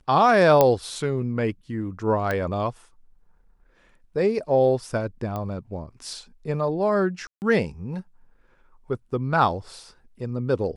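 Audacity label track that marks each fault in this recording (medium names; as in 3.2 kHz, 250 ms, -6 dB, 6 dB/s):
0.610000	0.610000	pop -4 dBFS
2.310000	2.310000	pop -13 dBFS
5.360000	5.360000	pop -18 dBFS
7.270000	7.420000	dropout 149 ms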